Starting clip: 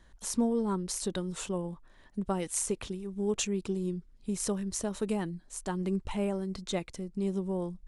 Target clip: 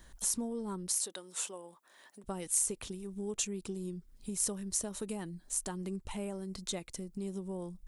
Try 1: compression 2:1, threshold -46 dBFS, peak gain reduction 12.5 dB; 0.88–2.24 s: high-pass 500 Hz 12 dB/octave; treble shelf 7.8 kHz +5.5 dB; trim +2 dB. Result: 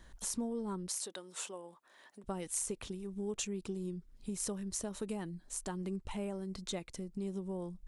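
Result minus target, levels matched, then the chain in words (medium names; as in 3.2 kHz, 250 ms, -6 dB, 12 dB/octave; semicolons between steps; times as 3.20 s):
8 kHz band -2.5 dB
compression 2:1, threshold -46 dBFS, peak gain reduction 12.5 dB; 0.88–2.24 s: high-pass 500 Hz 12 dB/octave; treble shelf 7.8 kHz +17.5 dB; trim +2 dB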